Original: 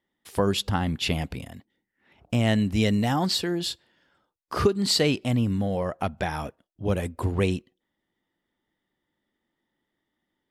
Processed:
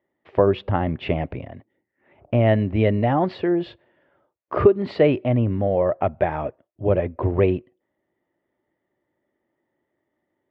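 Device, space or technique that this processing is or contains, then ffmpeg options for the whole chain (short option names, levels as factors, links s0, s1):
bass cabinet: -af "highpass=68,equalizer=f=110:t=q:w=4:g=3,equalizer=f=200:t=q:w=4:g=-5,equalizer=f=370:t=q:w=4:g=6,equalizer=f=600:t=q:w=4:g=10,equalizer=f=1500:t=q:w=4:g=-4,lowpass=f=2300:w=0.5412,lowpass=f=2300:w=1.3066,volume=1.41"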